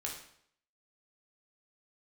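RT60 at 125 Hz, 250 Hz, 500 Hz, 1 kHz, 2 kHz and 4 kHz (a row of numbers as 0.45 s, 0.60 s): 0.65 s, 0.65 s, 0.65 s, 0.65 s, 0.60 s, 0.60 s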